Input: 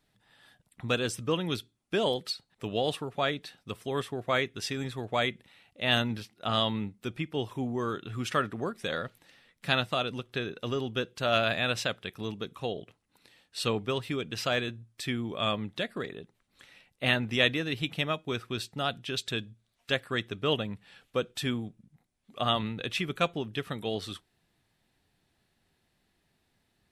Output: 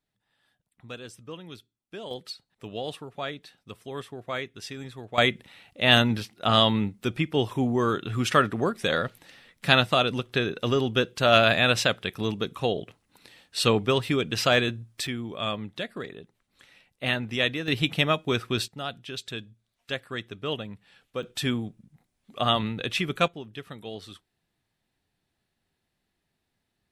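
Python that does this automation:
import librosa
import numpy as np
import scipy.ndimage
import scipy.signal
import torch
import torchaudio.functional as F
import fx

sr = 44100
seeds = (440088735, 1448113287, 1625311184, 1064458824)

y = fx.gain(x, sr, db=fx.steps((0.0, -11.5), (2.11, -4.5), (5.18, 7.5), (15.07, -0.5), (17.68, 7.0), (18.68, -3.0), (21.23, 4.0), (23.28, -5.5)))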